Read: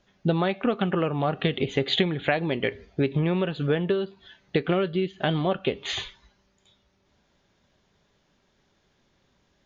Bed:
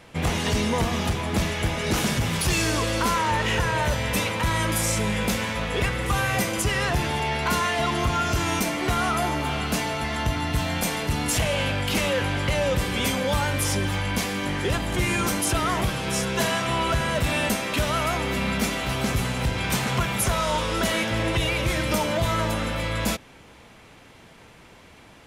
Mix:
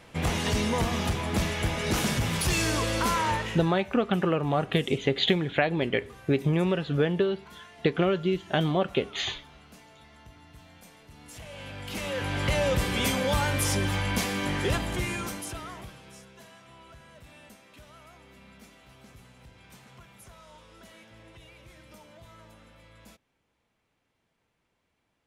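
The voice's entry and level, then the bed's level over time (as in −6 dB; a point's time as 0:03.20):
3.30 s, −0.5 dB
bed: 0:03.31 −3 dB
0:03.89 −26.5 dB
0:11.09 −26.5 dB
0:12.47 −2 dB
0:14.73 −2 dB
0:16.41 −27.5 dB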